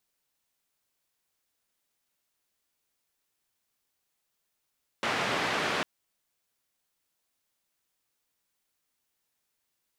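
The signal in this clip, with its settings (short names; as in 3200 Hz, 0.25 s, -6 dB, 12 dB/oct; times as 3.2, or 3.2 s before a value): noise band 150–2200 Hz, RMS -29.5 dBFS 0.80 s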